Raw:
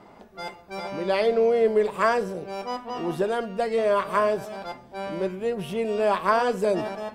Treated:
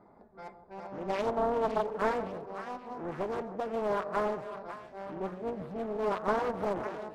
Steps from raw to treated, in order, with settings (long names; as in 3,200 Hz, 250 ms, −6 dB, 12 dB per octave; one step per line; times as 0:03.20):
adaptive Wiener filter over 15 samples
echo with a time of its own for lows and highs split 1,000 Hz, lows 157 ms, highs 552 ms, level −10.5 dB
highs frequency-modulated by the lows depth 0.84 ms
level −8.5 dB